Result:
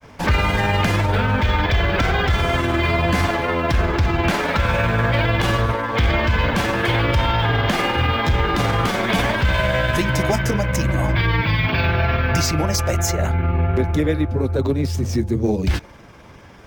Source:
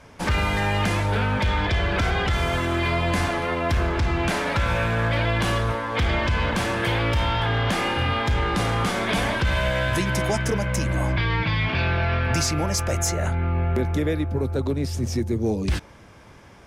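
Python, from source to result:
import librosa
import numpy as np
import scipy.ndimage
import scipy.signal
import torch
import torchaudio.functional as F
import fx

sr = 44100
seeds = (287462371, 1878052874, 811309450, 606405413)

y = fx.granulator(x, sr, seeds[0], grain_ms=100.0, per_s=20.0, spray_ms=11.0, spread_st=0)
y = np.interp(np.arange(len(y)), np.arange(len(y))[::2], y[::2])
y = F.gain(torch.from_numpy(y), 5.5).numpy()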